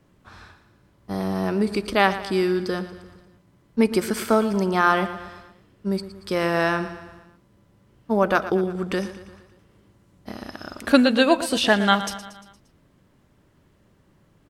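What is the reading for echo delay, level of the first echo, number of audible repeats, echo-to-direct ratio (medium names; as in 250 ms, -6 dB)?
116 ms, -13.5 dB, 5, -12.0 dB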